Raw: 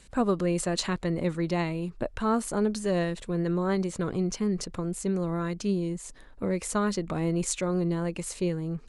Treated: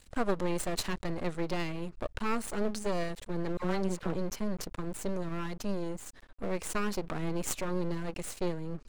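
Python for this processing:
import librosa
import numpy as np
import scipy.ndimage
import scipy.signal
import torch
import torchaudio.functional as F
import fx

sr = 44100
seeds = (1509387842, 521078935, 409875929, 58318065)

y = fx.dispersion(x, sr, late='lows', ms=74.0, hz=750.0, at=(3.57, 4.14))
y = np.maximum(y, 0.0)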